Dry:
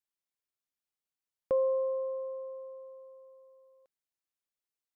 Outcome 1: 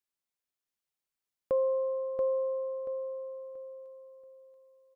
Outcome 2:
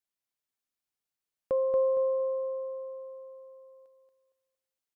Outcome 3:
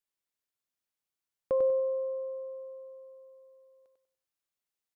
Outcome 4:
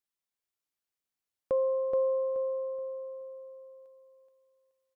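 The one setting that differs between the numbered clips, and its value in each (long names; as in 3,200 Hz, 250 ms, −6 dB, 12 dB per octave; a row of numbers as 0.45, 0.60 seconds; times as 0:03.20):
repeating echo, delay time: 682, 231, 97, 426 milliseconds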